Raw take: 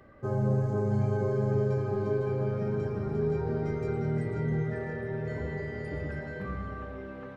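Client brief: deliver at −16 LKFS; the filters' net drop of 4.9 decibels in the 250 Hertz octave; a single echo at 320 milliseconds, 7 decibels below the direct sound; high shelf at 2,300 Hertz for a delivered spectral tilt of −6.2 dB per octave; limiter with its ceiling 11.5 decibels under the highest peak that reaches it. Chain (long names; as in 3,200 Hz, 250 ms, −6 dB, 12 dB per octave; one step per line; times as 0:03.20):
parametric band 250 Hz −8.5 dB
high-shelf EQ 2,300 Hz −7 dB
brickwall limiter −30.5 dBFS
single-tap delay 320 ms −7 dB
level +22 dB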